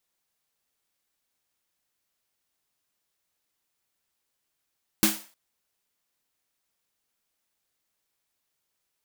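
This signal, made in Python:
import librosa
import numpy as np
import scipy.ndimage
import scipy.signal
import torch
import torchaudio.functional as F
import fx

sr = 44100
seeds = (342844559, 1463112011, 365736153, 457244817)

y = fx.drum_snare(sr, seeds[0], length_s=0.31, hz=210.0, second_hz=320.0, noise_db=1.0, noise_from_hz=510.0, decay_s=0.26, noise_decay_s=0.39)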